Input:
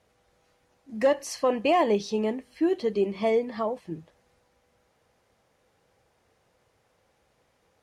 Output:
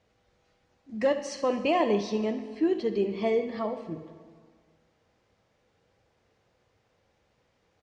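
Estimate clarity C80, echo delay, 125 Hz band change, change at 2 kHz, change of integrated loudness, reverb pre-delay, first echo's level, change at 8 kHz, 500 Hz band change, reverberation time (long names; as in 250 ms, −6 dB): 12.0 dB, 69 ms, 0.0 dB, −2.0 dB, −2.0 dB, 7 ms, −16.5 dB, can't be measured, −2.0 dB, 1.8 s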